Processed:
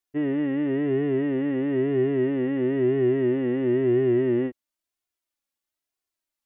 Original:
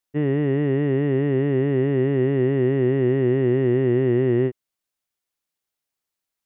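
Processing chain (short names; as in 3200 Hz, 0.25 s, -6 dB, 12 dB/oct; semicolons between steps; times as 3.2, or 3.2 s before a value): flange 1 Hz, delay 2.7 ms, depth 1 ms, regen +1%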